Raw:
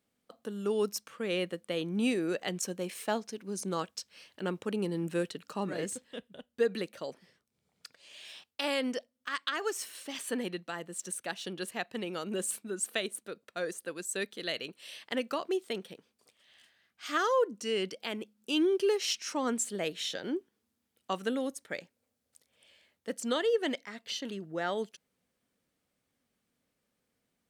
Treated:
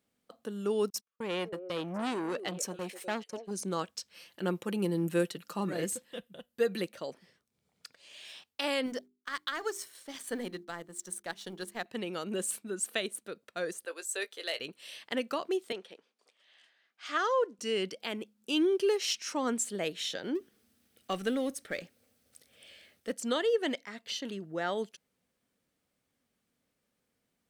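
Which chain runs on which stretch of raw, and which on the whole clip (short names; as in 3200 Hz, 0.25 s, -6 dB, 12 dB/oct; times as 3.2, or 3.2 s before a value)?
0.9–3.51 gate -44 dBFS, range -44 dB + delay with a stepping band-pass 0.25 s, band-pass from 480 Hz, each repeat 1.4 oct, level -10 dB + core saturation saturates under 1500 Hz
4.14–6.87 bell 13000 Hz +11 dB 0.53 oct + comb 5.8 ms, depth 43%
8.86–11.86 G.711 law mismatch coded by A + bell 2700 Hz -9 dB 0.25 oct + notches 50/100/150/200/250/300/350/400 Hz
13.85–14.6 HPF 420 Hz 24 dB/oct + hard clip -25.5 dBFS + doubler 18 ms -11 dB
15.72–17.59 block floating point 7-bit + HPF 390 Hz + air absorption 68 m
20.35–23.12 G.711 law mismatch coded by mu + bell 950 Hz -11.5 dB 0.26 oct + notch 7000 Hz, Q 13
whole clip: dry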